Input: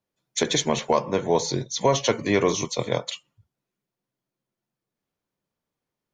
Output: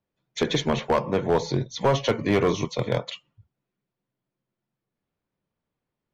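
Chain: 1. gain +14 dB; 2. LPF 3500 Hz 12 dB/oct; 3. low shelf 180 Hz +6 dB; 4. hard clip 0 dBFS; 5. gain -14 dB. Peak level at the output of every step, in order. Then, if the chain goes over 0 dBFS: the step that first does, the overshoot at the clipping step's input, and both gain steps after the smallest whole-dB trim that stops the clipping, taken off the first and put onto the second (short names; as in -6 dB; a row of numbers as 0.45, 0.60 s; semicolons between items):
+7.5, +7.5, +9.0, 0.0, -14.0 dBFS; step 1, 9.0 dB; step 1 +5 dB, step 5 -5 dB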